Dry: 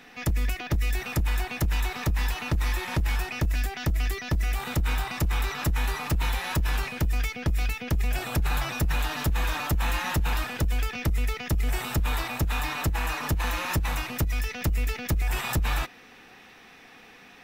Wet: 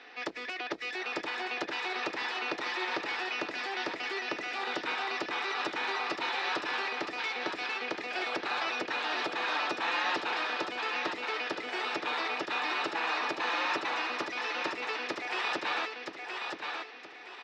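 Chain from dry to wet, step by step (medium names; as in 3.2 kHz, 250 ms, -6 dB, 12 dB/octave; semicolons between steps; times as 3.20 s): Chebyshev band-pass 350–4700 Hz, order 3; feedback delay 972 ms, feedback 31%, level -5 dB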